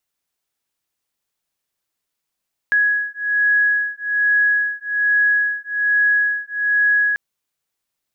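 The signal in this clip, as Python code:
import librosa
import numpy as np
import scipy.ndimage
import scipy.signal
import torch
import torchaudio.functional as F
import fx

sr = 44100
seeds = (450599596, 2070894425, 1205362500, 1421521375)

y = fx.two_tone_beats(sr, length_s=4.44, hz=1670.0, beat_hz=1.2, level_db=-18.0)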